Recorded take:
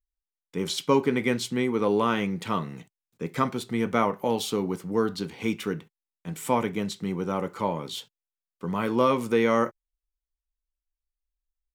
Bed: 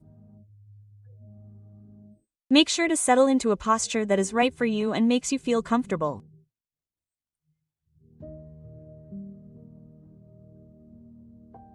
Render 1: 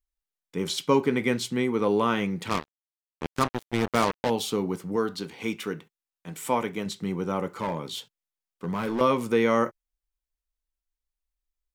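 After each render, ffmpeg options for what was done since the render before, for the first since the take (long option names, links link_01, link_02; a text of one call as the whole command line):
ffmpeg -i in.wav -filter_complex "[0:a]asettb=1/sr,asplit=3[link_01][link_02][link_03];[link_01]atrim=end=2.494[link_04];[link_02]atrim=start=2.49:end=4.3,asetpts=PTS-STARTPTS,afade=type=in:duration=0.004:curve=qsin,afade=type=out:start_time=1.806:duration=0.004:curve=qsin,acrusher=bits=3:mix=0:aa=0.5[link_05];[link_03]atrim=start=4.296[link_06];[link_04][link_05]acrossfade=duration=0.004:curve1=hsin:curve2=qsin[link_07];[link_07][link_06]acrossfade=duration=0.004:curve1=qsin:curve2=hsin,asettb=1/sr,asplit=3[link_08][link_09][link_10];[link_08]atrim=end=4.964[link_11];[link_09]atrim=start=4.96:end=6.86,asetpts=PTS-STARTPTS,afade=type=in:duration=0.004:curve=qsin,afade=type=out:start_time=1.896:duration=0.004:curve=qsin,lowshelf=frequency=210:gain=-8[link_12];[link_10]atrim=start=6.856[link_13];[link_11][link_12]acrossfade=duration=0.004:curve1=hsin:curve2=qsin[link_14];[link_14][link_13]acrossfade=duration=0.004:curve1=qsin:curve2=hsin,asettb=1/sr,asplit=3[link_15][link_16][link_17];[link_15]atrim=end=7.474[link_18];[link_16]atrim=start=7.47:end=9.01,asetpts=PTS-STARTPTS,afade=type=in:duration=0.004:curve=qsin,afade=type=out:start_time=1.536:duration=0.004:curve=qsin,asoftclip=type=hard:threshold=-23.5dB[link_19];[link_17]atrim=start=9.006[link_20];[link_18][link_19]acrossfade=duration=0.004:curve1=hsin:curve2=qsin[link_21];[link_21][link_20]acrossfade=duration=0.004:curve1=qsin:curve2=hsin" out.wav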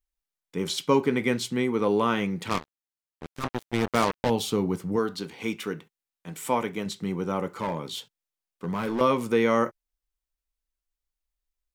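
ffmpeg -i in.wav -filter_complex "[0:a]asettb=1/sr,asplit=3[link_01][link_02][link_03];[link_01]atrim=end=2.584[link_04];[link_02]atrim=start=2.58:end=3.44,asetpts=PTS-STARTPTS,afade=type=in:duration=0.004:curve=qsin,afade=type=out:start_time=0.856:duration=0.004:curve=qsin,aeval=exprs='(tanh(31.6*val(0)+0.55)-tanh(0.55))/31.6':channel_layout=same[link_05];[link_03]atrim=start=3.436[link_06];[link_04][link_05]acrossfade=duration=0.004:curve1=hsin:curve2=qsin[link_07];[link_07][link_06]acrossfade=duration=0.004:curve1=qsin:curve2=hsin,asettb=1/sr,asplit=3[link_08][link_09][link_10];[link_08]atrim=end=4.174[link_11];[link_09]atrim=start=4.17:end=4.99,asetpts=PTS-STARTPTS,afade=type=in:duration=0.004:curve=qsin,afade=type=out:start_time=0.816:duration=0.004:curve=qsin,lowshelf=frequency=120:gain=11[link_12];[link_10]atrim=start=4.986[link_13];[link_11][link_12]acrossfade=duration=0.004:curve1=hsin:curve2=qsin[link_14];[link_14][link_13]acrossfade=duration=0.004:curve1=qsin:curve2=hsin" out.wav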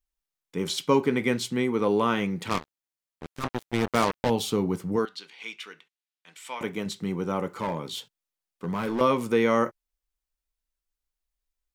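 ffmpeg -i in.wav -filter_complex "[0:a]asettb=1/sr,asplit=3[link_01][link_02][link_03];[link_01]atrim=end=5.054[link_04];[link_02]atrim=start=5.05:end=6.61,asetpts=PTS-STARTPTS,afade=type=in:duration=0.004:curve=qsin,afade=type=out:start_time=1.556:duration=0.004:curve=qsin,bandpass=frequency=3100:width_type=q:width=0.97[link_05];[link_03]atrim=start=6.606[link_06];[link_04][link_05]acrossfade=duration=0.004:curve1=hsin:curve2=qsin[link_07];[link_07][link_06]acrossfade=duration=0.004:curve1=qsin:curve2=hsin" out.wav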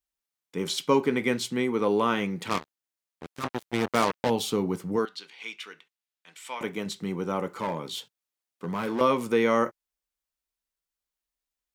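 ffmpeg -i in.wav -af "highpass=frequency=150:poles=1" out.wav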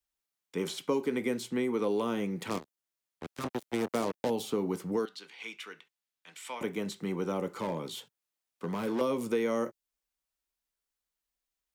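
ffmpeg -i in.wav -filter_complex "[0:a]acrossover=split=200|1500|5600[link_01][link_02][link_03][link_04];[link_01]alimiter=level_in=15dB:limit=-24dB:level=0:latency=1:release=344,volume=-15dB[link_05];[link_05][link_02][link_03][link_04]amix=inputs=4:normalize=0,acrossover=split=630|2600|6500[link_06][link_07][link_08][link_09];[link_06]acompressor=threshold=-27dB:ratio=4[link_10];[link_07]acompressor=threshold=-42dB:ratio=4[link_11];[link_08]acompressor=threshold=-50dB:ratio=4[link_12];[link_09]acompressor=threshold=-46dB:ratio=4[link_13];[link_10][link_11][link_12][link_13]amix=inputs=4:normalize=0" out.wav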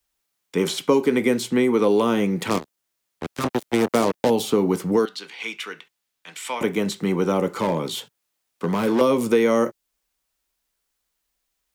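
ffmpeg -i in.wav -af "volume=11.5dB" out.wav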